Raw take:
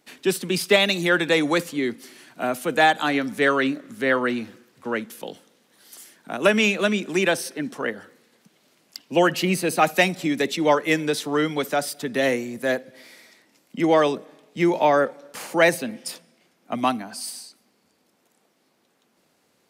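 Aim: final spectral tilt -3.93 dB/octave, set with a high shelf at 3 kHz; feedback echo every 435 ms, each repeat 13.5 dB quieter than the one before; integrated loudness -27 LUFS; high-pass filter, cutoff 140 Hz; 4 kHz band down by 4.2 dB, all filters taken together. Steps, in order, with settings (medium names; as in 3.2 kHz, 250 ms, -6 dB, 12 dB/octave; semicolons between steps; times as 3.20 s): high-pass 140 Hz; treble shelf 3 kHz +4 dB; peaking EQ 4 kHz -8.5 dB; feedback delay 435 ms, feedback 21%, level -13.5 dB; trim -4.5 dB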